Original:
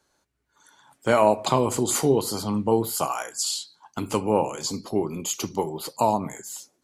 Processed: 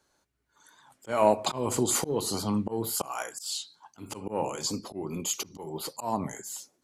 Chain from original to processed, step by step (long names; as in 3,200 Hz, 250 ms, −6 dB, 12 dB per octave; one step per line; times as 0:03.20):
in parallel at −11 dB: soft clipping −14 dBFS, distortion −14 dB
on the sum: volume swells 196 ms
wow of a warped record 45 rpm, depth 100 cents
level −4 dB